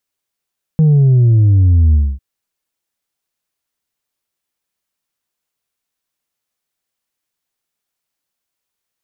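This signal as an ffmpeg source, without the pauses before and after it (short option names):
-f lavfi -i "aevalsrc='0.447*clip((1.4-t)/0.25,0,1)*tanh(1.33*sin(2*PI*160*1.4/log(65/160)*(exp(log(65/160)*t/1.4)-1)))/tanh(1.33)':d=1.4:s=44100"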